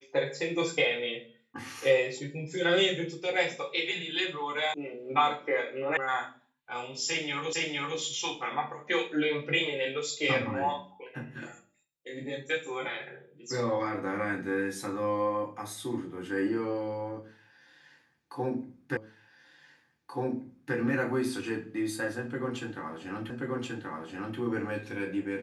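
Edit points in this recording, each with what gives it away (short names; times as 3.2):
4.74 sound cut off
5.97 sound cut off
7.53 repeat of the last 0.46 s
18.97 repeat of the last 1.78 s
23.3 repeat of the last 1.08 s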